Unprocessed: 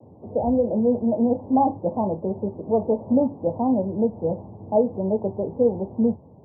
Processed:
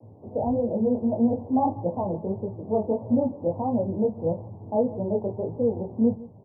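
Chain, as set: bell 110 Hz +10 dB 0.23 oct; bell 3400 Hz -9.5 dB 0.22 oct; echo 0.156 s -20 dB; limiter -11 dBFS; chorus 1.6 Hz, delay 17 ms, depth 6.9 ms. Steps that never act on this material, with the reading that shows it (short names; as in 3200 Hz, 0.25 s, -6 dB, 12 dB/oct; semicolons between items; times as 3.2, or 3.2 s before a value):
bell 3400 Hz: input band ends at 1000 Hz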